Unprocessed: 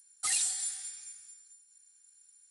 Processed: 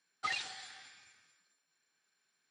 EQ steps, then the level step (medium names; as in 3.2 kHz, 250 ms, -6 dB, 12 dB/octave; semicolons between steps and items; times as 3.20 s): band-pass 120–7600 Hz; distance through air 220 m; treble shelf 4.1 kHz -8 dB; +7.5 dB